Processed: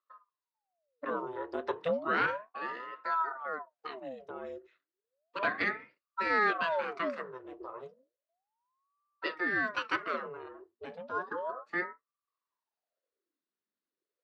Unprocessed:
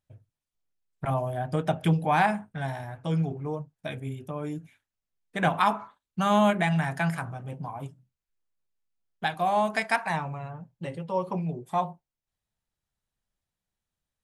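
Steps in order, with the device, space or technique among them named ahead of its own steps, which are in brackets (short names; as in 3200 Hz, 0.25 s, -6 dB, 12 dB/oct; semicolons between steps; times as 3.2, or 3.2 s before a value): voice changer toy (ring modulator with a swept carrier 690 Hz, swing 70%, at 0.33 Hz; speaker cabinet 410–4300 Hz, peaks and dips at 820 Hz -10 dB, 2300 Hz -7 dB, 3200 Hz -7 dB)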